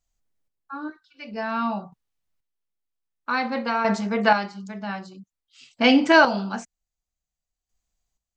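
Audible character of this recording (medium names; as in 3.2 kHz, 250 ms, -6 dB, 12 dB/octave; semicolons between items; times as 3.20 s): chopped level 0.52 Hz, depth 60%, duty 25%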